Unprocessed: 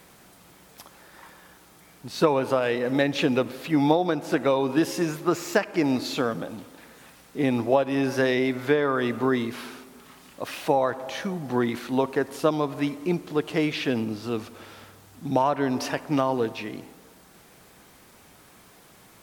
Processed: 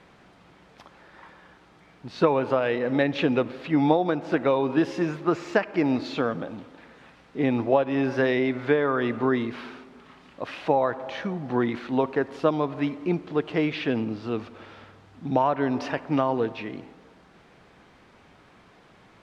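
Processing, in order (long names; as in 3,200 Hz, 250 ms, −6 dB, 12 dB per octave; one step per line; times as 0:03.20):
low-pass filter 3,200 Hz 12 dB per octave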